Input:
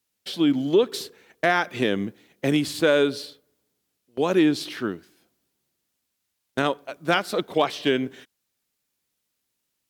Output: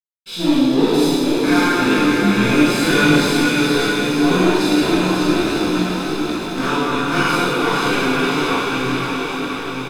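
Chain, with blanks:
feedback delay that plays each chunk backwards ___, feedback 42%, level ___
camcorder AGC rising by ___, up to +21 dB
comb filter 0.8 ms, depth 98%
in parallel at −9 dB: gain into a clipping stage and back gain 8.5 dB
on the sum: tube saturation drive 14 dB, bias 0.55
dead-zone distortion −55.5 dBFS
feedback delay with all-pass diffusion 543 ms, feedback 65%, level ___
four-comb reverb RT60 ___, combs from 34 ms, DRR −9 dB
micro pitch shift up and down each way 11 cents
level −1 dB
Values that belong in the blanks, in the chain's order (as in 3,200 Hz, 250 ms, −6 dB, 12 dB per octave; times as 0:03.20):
423 ms, −6 dB, 6.8 dB per second, −4 dB, 2 s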